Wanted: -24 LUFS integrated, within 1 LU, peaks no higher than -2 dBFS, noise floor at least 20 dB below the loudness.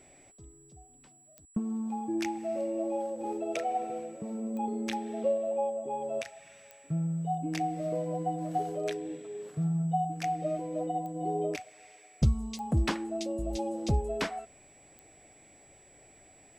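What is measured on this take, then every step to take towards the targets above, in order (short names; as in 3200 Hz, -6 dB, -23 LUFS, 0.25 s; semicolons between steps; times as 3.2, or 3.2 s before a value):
clicks 6; steady tone 7800 Hz; tone level -58 dBFS; loudness -33.0 LUFS; peak -13.5 dBFS; loudness target -24.0 LUFS
-> de-click; notch 7800 Hz, Q 30; gain +9 dB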